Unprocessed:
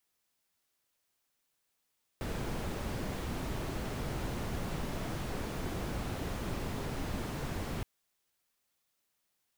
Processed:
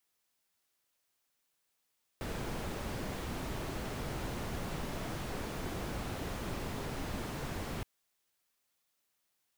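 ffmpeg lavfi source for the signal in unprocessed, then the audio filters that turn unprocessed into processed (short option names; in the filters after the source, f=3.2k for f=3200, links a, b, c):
-f lavfi -i "anoisesrc=c=brown:a=0.0741:d=5.62:r=44100:seed=1"
-af "lowshelf=f=330:g=-3"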